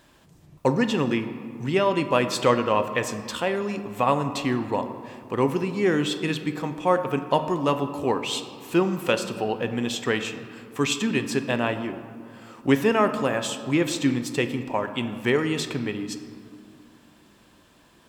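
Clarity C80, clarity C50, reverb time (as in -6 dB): 11.5 dB, 10.0 dB, 2.4 s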